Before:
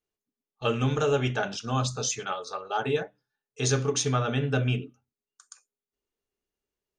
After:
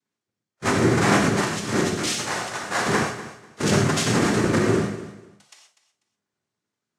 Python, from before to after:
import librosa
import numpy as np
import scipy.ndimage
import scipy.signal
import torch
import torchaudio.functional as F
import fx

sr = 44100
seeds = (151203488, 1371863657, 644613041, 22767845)

p1 = fx.halfwave_hold(x, sr)
p2 = fx.noise_vocoder(p1, sr, seeds[0], bands=3)
p3 = fx.hpss(p2, sr, part='harmonic', gain_db=5)
p4 = p3 + fx.echo_feedback(p3, sr, ms=246, feedback_pct=22, wet_db=-14.5, dry=0)
p5 = fx.rev_gated(p4, sr, seeds[1], gate_ms=150, shape='flat', drr_db=1.0)
y = p5 * 10.0 ** (-3.0 / 20.0)